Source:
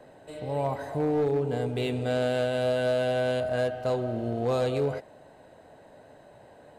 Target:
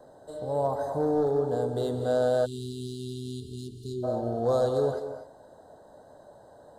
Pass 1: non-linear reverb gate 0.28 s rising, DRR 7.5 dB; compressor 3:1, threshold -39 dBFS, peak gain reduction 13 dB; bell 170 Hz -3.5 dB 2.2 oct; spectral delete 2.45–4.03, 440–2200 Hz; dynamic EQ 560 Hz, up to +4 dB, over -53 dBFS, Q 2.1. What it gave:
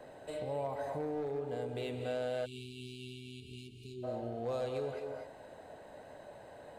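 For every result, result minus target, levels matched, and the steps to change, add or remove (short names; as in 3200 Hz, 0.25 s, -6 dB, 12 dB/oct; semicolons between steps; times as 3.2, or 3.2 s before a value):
compressor: peak gain reduction +13 dB; 2000 Hz band +7.5 dB
remove: compressor 3:1, threshold -39 dBFS, peak gain reduction 13 dB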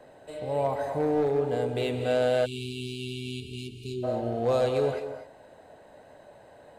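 2000 Hz band +7.0 dB
add after dynamic EQ: Butterworth band-stop 2400 Hz, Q 0.95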